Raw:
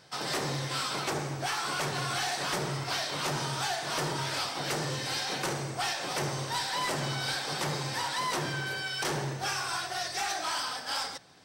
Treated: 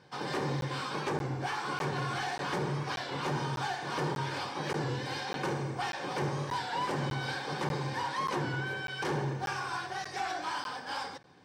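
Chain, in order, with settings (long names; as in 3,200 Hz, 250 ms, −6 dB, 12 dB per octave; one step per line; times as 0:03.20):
low-pass filter 1,500 Hz 6 dB per octave
notch comb filter 660 Hz
regular buffer underruns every 0.59 s, samples 512, zero, from 0:00.61
wow of a warped record 33 1/3 rpm, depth 100 cents
level +2 dB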